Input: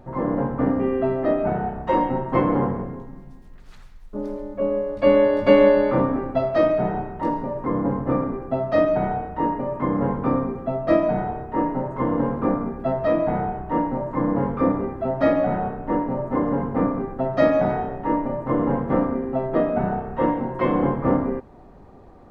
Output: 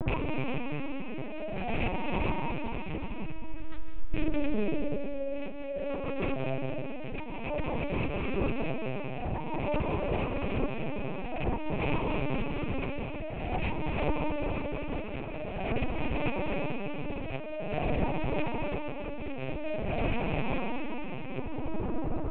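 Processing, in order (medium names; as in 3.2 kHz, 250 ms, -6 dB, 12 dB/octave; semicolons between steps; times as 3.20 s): rattle on loud lows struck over -32 dBFS, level -14 dBFS; tilt EQ -2 dB/octave; compressor with a negative ratio -31 dBFS, ratio -1; tremolo 0.5 Hz, depth 79%; saturation -21.5 dBFS, distortion -17 dB; reverberation RT60 4.2 s, pre-delay 134 ms, DRR 0.5 dB; LPC vocoder at 8 kHz pitch kept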